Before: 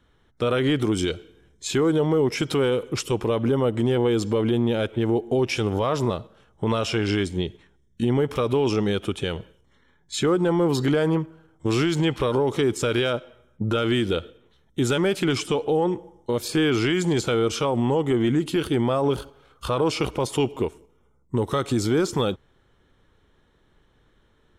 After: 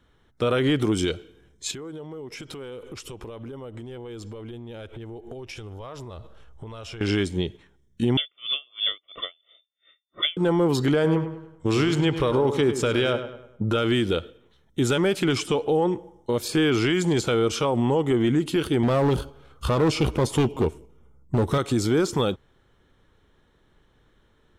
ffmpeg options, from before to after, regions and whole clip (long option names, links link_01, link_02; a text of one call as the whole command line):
ffmpeg -i in.wav -filter_complex "[0:a]asettb=1/sr,asplit=3[link_01][link_02][link_03];[link_01]atrim=end=1.714[link_04];[link_02]atrim=start=1.71:end=7.01,asetpts=PTS-STARTPTS,afade=type=in:duration=0.004:curve=qsin,afade=type=out:start_time=5.296:duration=0.004:curve=qsin,asubboost=boost=8.5:cutoff=64,acompressor=threshold=-35dB:ratio=8:attack=3.2:release=140:knee=1:detection=peak[link_05];[link_03]atrim=start=7.006[link_06];[link_04][link_05]acrossfade=duration=0.004:curve1=hsin:curve2=qsin[link_07];[link_07][link_06]acrossfade=duration=0.004:curve1=qsin:curve2=hsin,asettb=1/sr,asplit=3[link_08][link_09][link_10];[link_08]atrim=end=8.174[link_11];[link_09]atrim=start=8.17:end=10.37,asetpts=PTS-STARTPTS,afade=type=in:duration=0.004:curve=qsin,afade=type=out:start_time=2.196:duration=0.004:curve=qsin,aecho=1:1:1.3:0.84,atrim=end_sample=97020,lowpass=frequency=3100:width_type=q:width=0.5098,lowpass=frequency=3100:width_type=q:width=0.6013,lowpass=frequency=3100:width_type=q:width=0.9,lowpass=frequency=3100:width_type=q:width=2.563,afreqshift=-3600,aeval=exprs='val(0)*pow(10,-38*(0.5-0.5*cos(2*PI*2.9*n/s))/20)':channel_layout=same[link_12];[link_10]atrim=start=10.366[link_13];[link_11][link_12]acrossfade=duration=0.004:curve1=hsin:curve2=qsin[link_14];[link_14][link_13]acrossfade=duration=0.004:curve1=qsin:curve2=hsin,asettb=1/sr,asplit=3[link_15][link_16][link_17];[link_15]atrim=end=10.944[link_18];[link_16]atrim=start=10.94:end=13.67,asetpts=PTS-STARTPTS,afade=type=in:duration=0.004:curve=qsin,afade=type=out:start_time=2.726:duration=0.004:curve=qsin,highshelf=frequency=10000:gain=-5.5,asplit=2[link_19][link_20];[link_20]adelay=101,lowpass=frequency=3400:poles=1,volume=-10dB,asplit=2[link_21][link_22];[link_22]adelay=101,lowpass=frequency=3400:poles=1,volume=0.44,asplit=2[link_23][link_24];[link_24]adelay=101,lowpass=frequency=3400:poles=1,volume=0.44,asplit=2[link_25][link_26];[link_26]adelay=101,lowpass=frequency=3400:poles=1,volume=0.44,asplit=2[link_27][link_28];[link_28]adelay=101,lowpass=frequency=3400:poles=1,volume=0.44[link_29];[link_19][link_21][link_23][link_25][link_27][link_29]amix=inputs=6:normalize=0,atrim=end_sample=120393[link_30];[link_17]atrim=start=13.666[link_31];[link_18][link_30]acrossfade=duration=0.004:curve1=hsin:curve2=qsin[link_32];[link_32][link_31]acrossfade=duration=0.004:curve1=qsin:curve2=hsin,asettb=1/sr,asplit=3[link_33][link_34][link_35];[link_33]atrim=end=18.834[link_36];[link_34]atrim=start=18.83:end=21.58,asetpts=PTS-STARTPTS,afade=type=in:duration=0.004:curve=qsin,afade=type=out:start_time=2.746:duration=0.004:curve=qsin,lowshelf=frequency=290:gain=8.5,volume=16.5dB,asoftclip=hard,volume=-16.5dB,asplit=2[link_37][link_38];[link_38]adelay=13,volume=-13dB[link_39];[link_37][link_39]amix=inputs=2:normalize=0,atrim=end_sample=121275[link_40];[link_35]atrim=start=21.576[link_41];[link_36][link_40]acrossfade=duration=0.004:curve1=hsin:curve2=qsin[link_42];[link_42][link_41]acrossfade=duration=0.004:curve1=qsin:curve2=hsin" out.wav